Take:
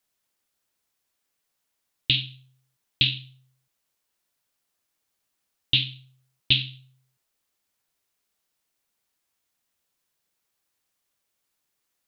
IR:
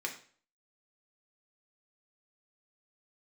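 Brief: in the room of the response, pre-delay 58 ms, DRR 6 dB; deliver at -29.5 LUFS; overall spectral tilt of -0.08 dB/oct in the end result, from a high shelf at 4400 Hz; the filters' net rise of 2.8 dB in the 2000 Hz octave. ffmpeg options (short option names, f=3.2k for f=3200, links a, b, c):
-filter_complex "[0:a]equalizer=f=2k:t=o:g=8,highshelf=f=4.4k:g=-8.5,asplit=2[a][b];[1:a]atrim=start_sample=2205,adelay=58[c];[b][c]afir=irnorm=-1:irlink=0,volume=-9dB[d];[a][d]amix=inputs=2:normalize=0,volume=-5.5dB"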